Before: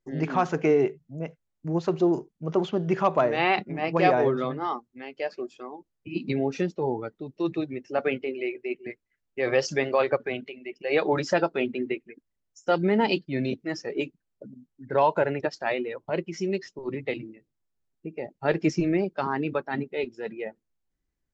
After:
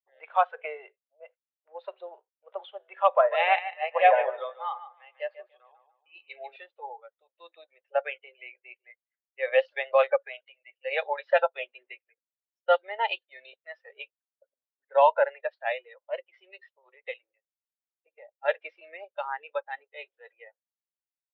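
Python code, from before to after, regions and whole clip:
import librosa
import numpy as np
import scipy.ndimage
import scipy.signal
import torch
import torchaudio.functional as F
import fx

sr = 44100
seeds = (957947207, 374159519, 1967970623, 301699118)

y = fx.chain(x, sr, fx.env_lowpass_down(base_hz=2800.0, full_db=-18.0),
    fx.echo_bbd(ms=147, stages=4096, feedback_pct=35, wet_db=-7), at=(3.08, 6.56))
y = fx.noise_reduce_blind(y, sr, reduce_db=10)
y = scipy.signal.sosfilt(scipy.signal.cheby1(5, 1.0, [520.0, 3700.0], 'bandpass', fs=sr, output='sos'), y)
y = fx.upward_expand(y, sr, threshold_db=-40.0, expansion=1.5)
y = F.gain(torch.from_numpy(y), 4.5).numpy()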